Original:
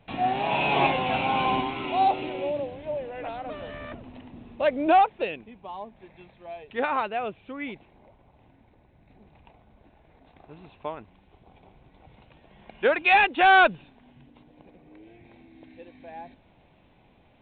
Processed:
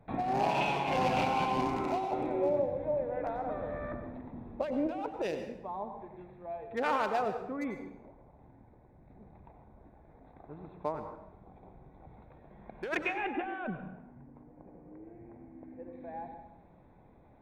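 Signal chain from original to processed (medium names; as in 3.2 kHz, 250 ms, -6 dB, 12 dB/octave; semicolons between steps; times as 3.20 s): local Wiener filter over 15 samples; 12.97–15.93 s: Bessel low-pass 1.7 kHz, order 8; compressor with a negative ratio -28 dBFS, ratio -1; plate-style reverb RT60 0.82 s, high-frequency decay 0.75×, pre-delay 80 ms, DRR 6.5 dB; trim -4 dB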